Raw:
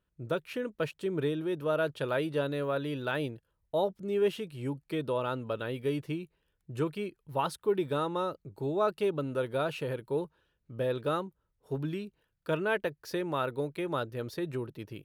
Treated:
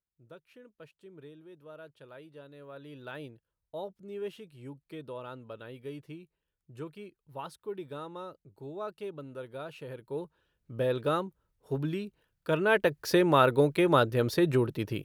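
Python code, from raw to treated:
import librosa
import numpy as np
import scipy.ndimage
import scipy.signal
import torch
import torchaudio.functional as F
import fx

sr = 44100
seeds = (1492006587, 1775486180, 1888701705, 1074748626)

y = fx.gain(x, sr, db=fx.line((2.48, -19.0), (3.08, -10.0), (9.71, -10.0), (10.74, 2.0), (12.5, 2.0), (13.05, 9.5)))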